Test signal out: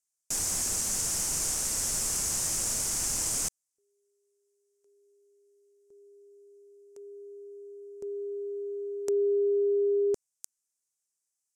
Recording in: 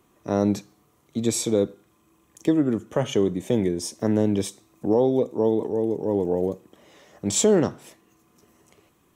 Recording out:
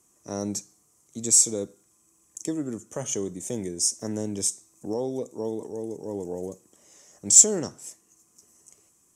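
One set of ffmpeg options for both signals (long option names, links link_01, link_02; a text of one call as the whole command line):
ffmpeg -i in.wav -af "lowpass=frequency=7400:width_type=q:width=1.5,aexciter=amount=10.2:drive=3.4:freq=5500,volume=-9.5dB" out.wav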